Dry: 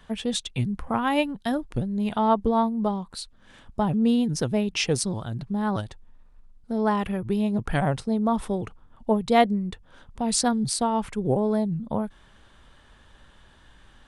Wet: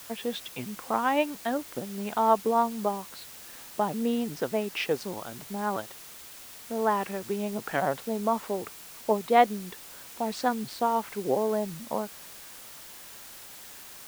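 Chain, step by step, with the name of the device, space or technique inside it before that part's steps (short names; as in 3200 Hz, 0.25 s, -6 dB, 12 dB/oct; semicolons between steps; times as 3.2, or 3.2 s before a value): wax cylinder (BPF 350–2500 Hz; wow and flutter; white noise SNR 16 dB)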